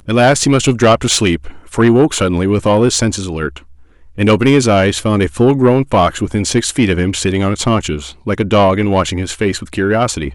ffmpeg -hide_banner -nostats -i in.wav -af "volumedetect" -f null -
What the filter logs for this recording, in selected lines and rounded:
mean_volume: -13.3 dB
max_volume: -2.3 dB